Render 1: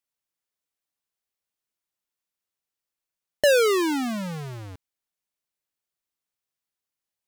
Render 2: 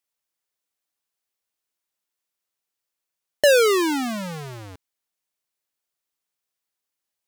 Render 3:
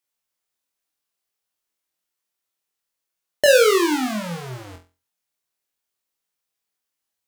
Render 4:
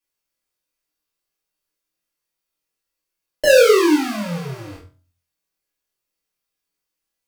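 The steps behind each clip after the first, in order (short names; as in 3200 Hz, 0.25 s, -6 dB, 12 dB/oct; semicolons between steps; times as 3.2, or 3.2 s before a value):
tone controls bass -5 dB, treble +1 dB; gain +3 dB
flutter echo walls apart 4 m, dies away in 0.31 s
reverb RT60 0.30 s, pre-delay 3 ms, DRR -6.5 dB; gain -8 dB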